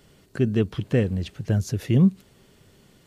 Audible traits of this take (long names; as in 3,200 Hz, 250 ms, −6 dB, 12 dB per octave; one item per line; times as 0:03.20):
background noise floor −57 dBFS
spectral slope −8.0 dB per octave